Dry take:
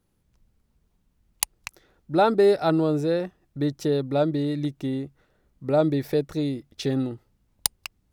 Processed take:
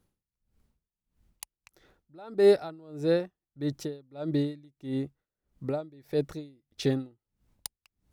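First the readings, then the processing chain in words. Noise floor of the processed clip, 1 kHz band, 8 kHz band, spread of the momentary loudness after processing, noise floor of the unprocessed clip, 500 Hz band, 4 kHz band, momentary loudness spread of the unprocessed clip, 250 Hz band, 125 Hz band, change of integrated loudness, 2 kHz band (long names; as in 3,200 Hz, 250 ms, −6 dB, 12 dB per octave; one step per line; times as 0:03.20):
below −85 dBFS, −16.0 dB, below −10 dB, 23 LU, −70 dBFS, −4.5 dB, −8.0 dB, 16 LU, −7.5 dB, −7.0 dB, −5.0 dB, −7.5 dB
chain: tremolo with a sine in dB 1.6 Hz, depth 29 dB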